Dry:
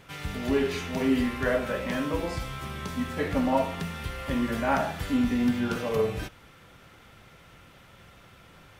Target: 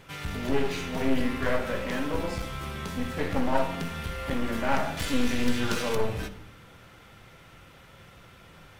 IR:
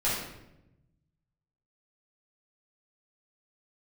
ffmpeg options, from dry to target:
-filter_complex "[0:a]asettb=1/sr,asplit=3[a][b][c];[a]atrim=end=4.974[d];[b]atrim=start=4.97:end=5.95,asetpts=PTS-STARTPTS,afade=t=in:d=0.004:c=qsin,afade=t=out:st=0.976:d=0.004:c=qsin,equalizer=f=6.4k:w=0.32:g=10.5[e];[c]atrim=start=5.946[f];[d][e]acrossfade=d=0.004:c1=hsin:c2=qsin[g];[g][f]acrossfade=d=0.004:c1=qsin:c2=hsin,aeval=exprs='clip(val(0),-1,0.0237)':c=same,asplit=2[h][i];[1:a]atrim=start_sample=2205[j];[i][j]afir=irnorm=-1:irlink=0,volume=-19dB[k];[h][k]amix=inputs=2:normalize=0"

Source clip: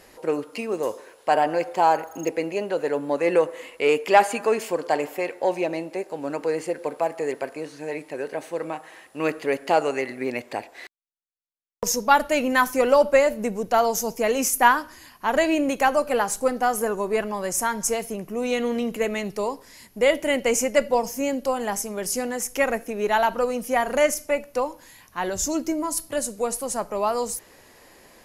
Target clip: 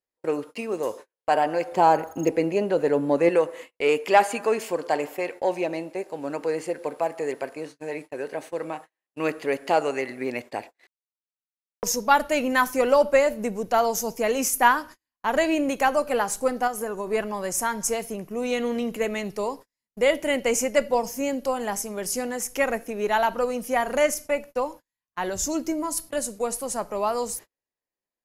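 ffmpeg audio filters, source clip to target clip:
-filter_complex "[0:a]agate=range=-42dB:threshold=-37dB:ratio=16:detection=peak,asettb=1/sr,asplit=3[a][b][c];[a]atrim=end=1.724[d];[b]atrim=start=1.72:end=3.29,asetpts=PTS-STARTPTS,afade=t=in:d=0.004:c=qsin,afade=t=out:st=1.566:d=0.004:c=qsin,lowshelf=f=410:g=10[e];[c]atrim=start=3.286[f];[d][e]acrossfade=d=0.004:c1=hsin:c2=qsin[g];[g][f]acrossfade=d=0.004:c1=qsin:c2=hsin,asettb=1/sr,asplit=3[h][i][j];[h]atrim=end=16.674[k];[i]atrim=start=16.67:end=17.07,asetpts=PTS-STARTPTS,afade=t=in:d=0.004:c=qsin,afade=t=out:st=0.396:d=0.004:c=qsin,acompressor=threshold=-25dB:ratio=4[l];[j]atrim=start=17.066[m];[k][l]acrossfade=d=0.004:c1=hsin:c2=qsin[n];[n][m]acrossfade=d=0.004:c1=qsin:c2=hsin,volume=-1.5dB"

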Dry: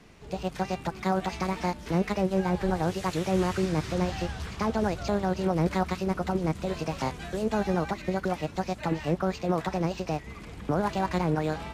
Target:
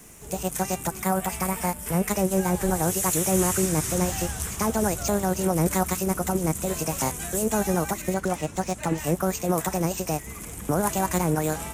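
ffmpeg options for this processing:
-filter_complex "[0:a]asettb=1/sr,asplit=3[a][b][c];[a]atrim=end=8.144[d];[b]atrim=start=8.14:end=8.98,asetpts=PTS-STARTPTS,afade=t=in:d=0.004:c=qsin,afade=t=out:st=0.836:d=0.004:c=qsin,adynamicsmooth=sensitivity=7:basefreq=7.2k[e];[c]atrim=start=8.976[f];[d][e]acrossfade=d=0.004:c1=hsin:c2=qsin[g];[g][f]acrossfade=d=0.004:c1=qsin:c2=hsin,aexciter=amount=12.1:drive=5.9:freq=6.6k,asettb=1/sr,asplit=3[h][i][j];[h]atrim=end=1.034[k];[i]atrim=start=1.03:end=2.08,asetpts=PTS-STARTPTS,afade=t=in:d=0.004:c=qsin,afade=t=out:st=1.046:d=0.004:c=qsin,equalizer=f=315:t=o:w=0.33:g=-10,equalizer=f=4k:t=o:w=0.33:g=-6,equalizer=f=6.3k:t=o:w=0.33:g=-10[l];[j]atrim=start=2.076[m];[k][l]acrossfade=d=0.004:c1=hsin:c2=qsin[n];[n][m]acrossfade=d=0.004:c1=qsin:c2=hsin,volume=2.5dB"

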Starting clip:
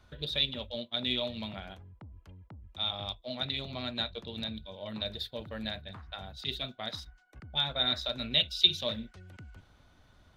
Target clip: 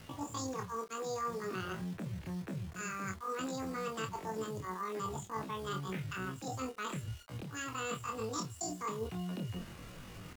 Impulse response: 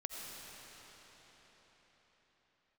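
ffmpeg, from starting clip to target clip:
-filter_complex "[0:a]lowpass=1.4k,areverse,acompressor=threshold=-49dB:ratio=5,areverse,acrusher=bits=10:mix=0:aa=0.000001,asetrate=85689,aresample=44100,atempo=0.514651,asplit=2[a][b];[b]adelay=27,volume=-6dB[c];[a][c]amix=inputs=2:normalize=0,volume=11.5dB"

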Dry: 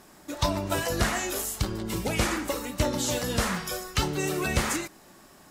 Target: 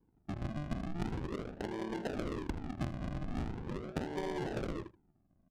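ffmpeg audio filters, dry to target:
-af "highpass=310,afwtdn=0.0112,acompressor=threshold=-34dB:ratio=12,aresample=16000,acrusher=samples=24:mix=1:aa=0.000001:lfo=1:lforange=24:lforate=0.41,aresample=44100,adynamicsmooth=sensitivity=5.5:basefreq=940,aecho=1:1:79:0.15,volume=1dB"

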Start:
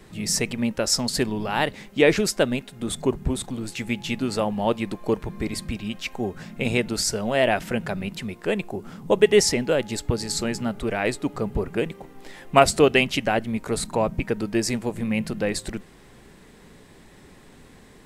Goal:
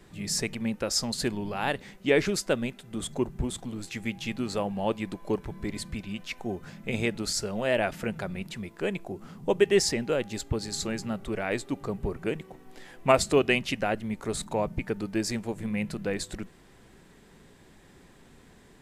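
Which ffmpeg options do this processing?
-af "asetrate=42336,aresample=44100,volume=-5.5dB"

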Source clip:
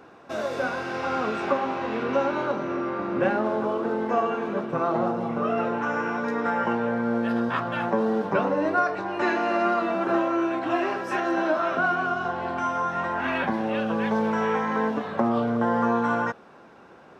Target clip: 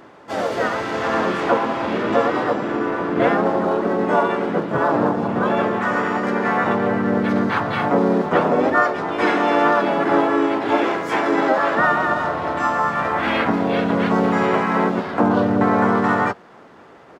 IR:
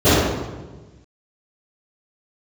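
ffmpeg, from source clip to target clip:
-filter_complex "[0:a]asplit=3[a][b][c];[b]asetrate=37084,aresample=44100,atempo=1.18921,volume=0dB[d];[c]asetrate=55563,aresample=44100,atempo=0.793701,volume=-1dB[e];[a][d][e]amix=inputs=3:normalize=0,asplit=2[f][g];[g]aeval=exprs='sgn(val(0))*max(abs(val(0))-0.0141,0)':c=same,volume=-10.5dB[h];[f][h]amix=inputs=2:normalize=0"

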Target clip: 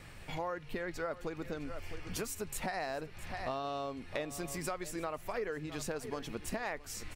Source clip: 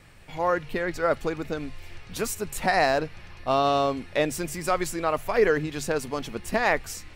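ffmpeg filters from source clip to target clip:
-filter_complex "[0:a]asettb=1/sr,asplit=3[a][b][c];[a]atrim=end=1.644[d];[b]atrim=start=1.64:end=2.2,asetpts=PTS-STARTPTS,afade=t=in:d=0.004:c=qsin,afade=t=out:st=0.556:d=0.004:c=qsin,bandreject=f=3.8k:w=5.5[e];[c]atrim=start=2.196[f];[d][e]acrossfade=d=0.004:c1=hsin:c2=qsin[g];[g][f]acrossfade=d=0.004:c1=qsin:c2=hsin,aecho=1:1:661:0.126,acompressor=threshold=-37dB:ratio=6,volume=1dB"

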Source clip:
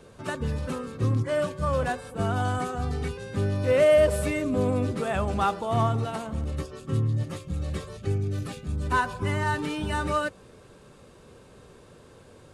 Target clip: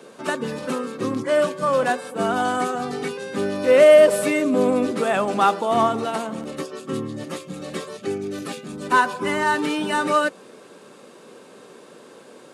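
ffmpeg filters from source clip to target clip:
-af "highpass=f=210:w=0.5412,highpass=f=210:w=1.3066,volume=7.5dB"

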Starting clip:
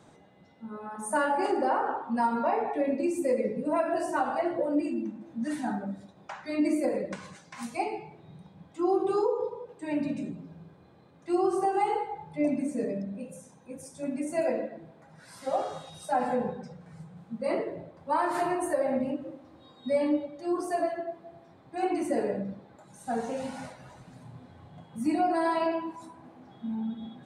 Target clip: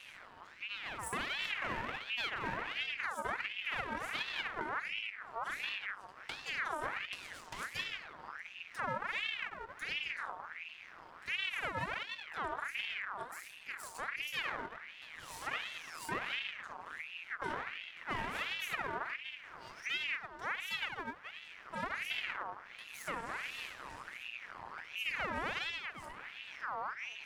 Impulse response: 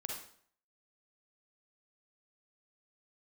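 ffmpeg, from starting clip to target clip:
-af "acompressor=threshold=-47dB:ratio=2.5,aeval=exprs='max(val(0),0)':c=same,aeval=exprs='val(0)*sin(2*PI*1800*n/s+1800*0.5/1.4*sin(2*PI*1.4*n/s))':c=same,volume=9dB"

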